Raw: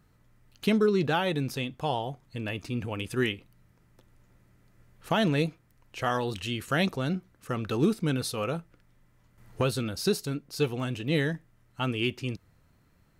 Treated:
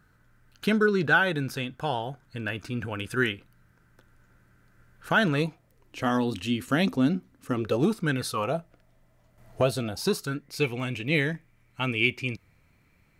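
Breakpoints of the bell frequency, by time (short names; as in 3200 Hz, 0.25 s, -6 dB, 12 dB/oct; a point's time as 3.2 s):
bell +15 dB 0.3 oct
5.28 s 1500 Hz
6 s 260 Hz
7.51 s 260 Hz
8.17 s 2100 Hz
8.53 s 660 Hz
9.86 s 660 Hz
10.55 s 2300 Hz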